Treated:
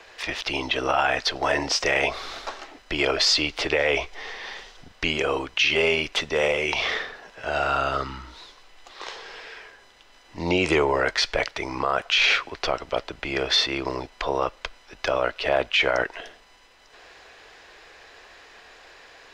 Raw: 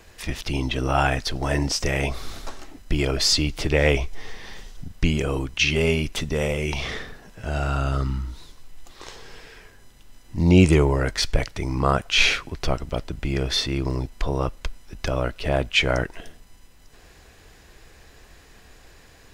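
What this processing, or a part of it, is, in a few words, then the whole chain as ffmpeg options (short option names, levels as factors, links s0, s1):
DJ mixer with the lows and highs turned down: -filter_complex "[0:a]acrossover=split=410 5500:gain=0.0891 1 0.1[s0][s1][s2];[s0][s1][s2]amix=inputs=3:normalize=0,alimiter=limit=0.141:level=0:latency=1:release=27,volume=2.11"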